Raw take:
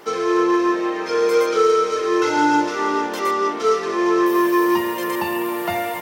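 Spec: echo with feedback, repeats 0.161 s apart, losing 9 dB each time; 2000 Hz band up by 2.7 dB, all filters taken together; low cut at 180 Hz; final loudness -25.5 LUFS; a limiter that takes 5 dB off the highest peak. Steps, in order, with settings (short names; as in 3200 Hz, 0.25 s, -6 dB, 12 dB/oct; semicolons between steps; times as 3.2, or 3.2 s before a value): HPF 180 Hz; bell 2000 Hz +3.5 dB; limiter -11 dBFS; feedback echo 0.161 s, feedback 35%, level -9 dB; gain -6.5 dB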